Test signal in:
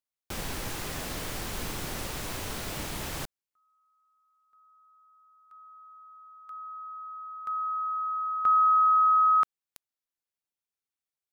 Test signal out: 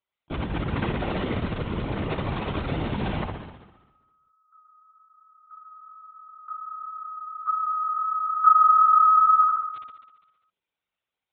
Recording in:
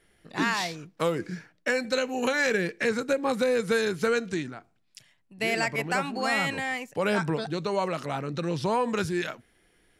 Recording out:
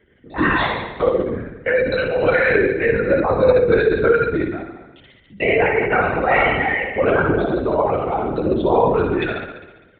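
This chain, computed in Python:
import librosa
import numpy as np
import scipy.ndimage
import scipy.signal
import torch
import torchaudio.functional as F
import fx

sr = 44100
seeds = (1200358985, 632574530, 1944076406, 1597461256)

p1 = fx.envelope_sharpen(x, sr, power=2.0)
p2 = p1 + fx.room_flutter(p1, sr, wall_m=11.4, rt60_s=1.1, dry=0)
p3 = fx.lpc_vocoder(p2, sr, seeds[0], excitation='whisper', order=16)
p4 = fx.highpass(p3, sr, hz=93.0, slope=6)
p5 = fx.notch(p4, sr, hz=1700.0, q=18.0)
y = p5 * 10.0 ** (8.5 / 20.0)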